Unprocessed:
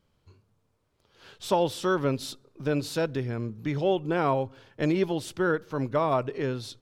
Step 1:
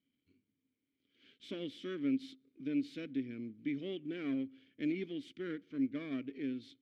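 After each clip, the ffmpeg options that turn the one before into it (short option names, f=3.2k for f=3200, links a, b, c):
-filter_complex "[0:a]aeval=exprs='if(lt(val(0),0),0.447*val(0),val(0))':c=same,asplit=3[a][b][c];[a]bandpass=f=270:t=q:w=8,volume=0dB[d];[b]bandpass=f=2.29k:t=q:w=8,volume=-6dB[e];[c]bandpass=f=3.01k:t=q:w=8,volume=-9dB[f];[d][e][f]amix=inputs=3:normalize=0,volume=3dB"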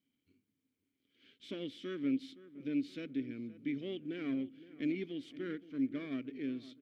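-filter_complex "[0:a]asplit=2[a][b];[b]adelay=518,lowpass=f=1.6k:p=1,volume=-15.5dB,asplit=2[c][d];[d]adelay=518,lowpass=f=1.6k:p=1,volume=0.46,asplit=2[e][f];[f]adelay=518,lowpass=f=1.6k:p=1,volume=0.46,asplit=2[g][h];[h]adelay=518,lowpass=f=1.6k:p=1,volume=0.46[i];[a][c][e][g][i]amix=inputs=5:normalize=0"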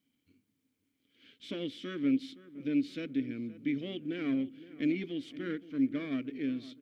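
-af "bandreject=f=380:w=12,volume=5dB"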